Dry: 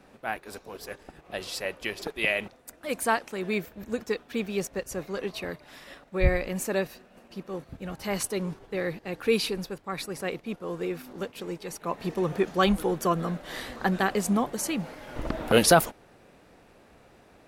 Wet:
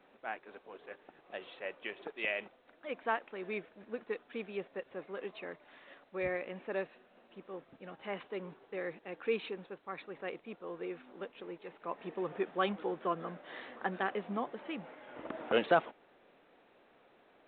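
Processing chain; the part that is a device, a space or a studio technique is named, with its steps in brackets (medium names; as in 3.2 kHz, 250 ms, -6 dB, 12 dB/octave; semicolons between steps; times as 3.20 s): telephone (band-pass 290–3200 Hz; trim -8 dB; A-law 64 kbps 8 kHz)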